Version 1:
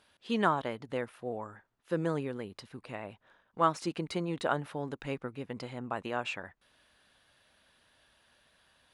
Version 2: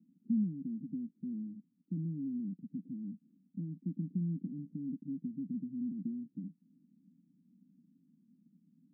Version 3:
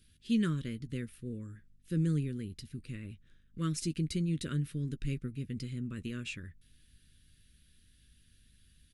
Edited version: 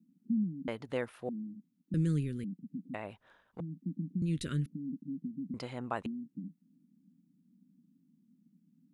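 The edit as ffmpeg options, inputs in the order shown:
-filter_complex "[0:a]asplit=3[a][b][c];[2:a]asplit=2[d][e];[1:a]asplit=6[f][g][h][i][j][k];[f]atrim=end=0.682[l];[a]atrim=start=0.678:end=1.292[m];[g]atrim=start=1.288:end=1.942[n];[d]atrim=start=1.938:end=2.442[o];[h]atrim=start=2.438:end=2.942[p];[b]atrim=start=2.938:end=3.602[q];[i]atrim=start=3.598:end=4.222[r];[e]atrim=start=4.218:end=4.662[s];[j]atrim=start=4.658:end=5.542[t];[c]atrim=start=5.538:end=6.062[u];[k]atrim=start=6.058[v];[l][m]acrossfade=d=0.004:c1=hsin:c2=hsin[w];[w][n]acrossfade=d=0.004:c1=hsin:c2=hsin[x];[x][o]acrossfade=d=0.004:c1=hsin:c2=hsin[y];[y][p]acrossfade=d=0.004:c1=hsin:c2=hsin[z];[z][q]acrossfade=d=0.004:c1=hsin:c2=hsin[aa];[aa][r]acrossfade=d=0.004:c1=hsin:c2=hsin[ab];[ab][s]acrossfade=d=0.004:c1=hsin:c2=hsin[ac];[ac][t]acrossfade=d=0.004:c1=hsin:c2=hsin[ad];[ad][u]acrossfade=d=0.004:c1=hsin:c2=hsin[ae];[ae][v]acrossfade=d=0.004:c1=hsin:c2=hsin"

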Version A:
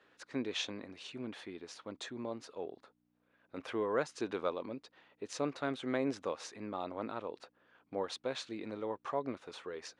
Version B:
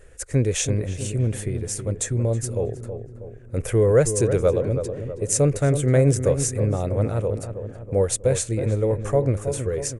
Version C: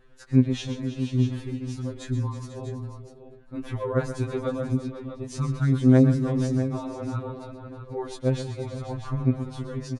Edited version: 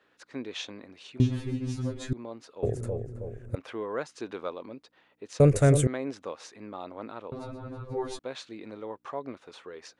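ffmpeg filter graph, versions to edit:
-filter_complex "[2:a]asplit=2[a][b];[1:a]asplit=2[c][d];[0:a]asplit=5[e][f][g][h][i];[e]atrim=end=1.202[j];[a]atrim=start=1.198:end=2.132[k];[f]atrim=start=2.128:end=2.632[l];[c]atrim=start=2.628:end=3.552[m];[g]atrim=start=3.548:end=5.402[n];[d]atrim=start=5.398:end=5.872[o];[h]atrim=start=5.868:end=7.322[p];[b]atrim=start=7.318:end=8.192[q];[i]atrim=start=8.188[r];[j][k]acrossfade=d=0.004:c1=hsin:c2=hsin[s];[s][l]acrossfade=d=0.004:c1=hsin:c2=hsin[t];[t][m]acrossfade=d=0.004:c1=hsin:c2=hsin[u];[u][n]acrossfade=d=0.004:c1=hsin:c2=hsin[v];[v][o]acrossfade=d=0.004:c1=hsin:c2=hsin[w];[w][p]acrossfade=d=0.004:c1=hsin:c2=hsin[x];[x][q]acrossfade=d=0.004:c1=hsin:c2=hsin[y];[y][r]acrossfade=d=0.004:c1=hsin:c2=hsin"

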